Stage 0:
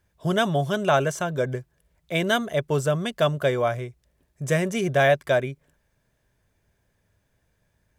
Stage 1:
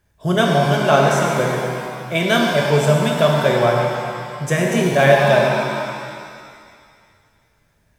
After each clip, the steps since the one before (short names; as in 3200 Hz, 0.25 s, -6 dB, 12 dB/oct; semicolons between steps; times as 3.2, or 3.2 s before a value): shimmer reverb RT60 2.1 s, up +7 st, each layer -8 dB, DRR -1 dB; gain +3.5 dB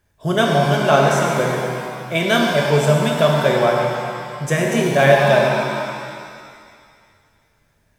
notches 60/120/180 Hz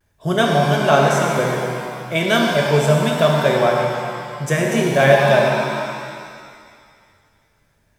vibrato 0.37 Hz 22 cents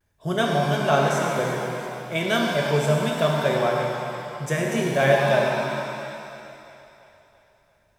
split-band echo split 440 Hz, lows 0.239 s, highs 0.34 s, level -14 dB; gain -6 dB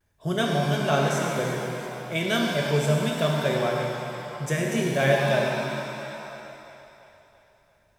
dynamic EQ 900 Hz, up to -5 dB, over -35 dBFS, Q 0.76